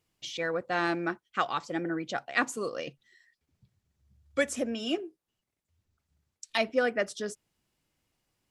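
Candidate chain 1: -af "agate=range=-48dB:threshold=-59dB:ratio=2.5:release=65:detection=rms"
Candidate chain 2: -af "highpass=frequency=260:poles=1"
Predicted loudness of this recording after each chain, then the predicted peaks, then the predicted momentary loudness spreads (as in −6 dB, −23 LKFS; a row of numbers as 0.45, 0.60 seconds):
−31.5, −32.5 LKFS; −11.5, −11.5 dBFS; 11, 11 LU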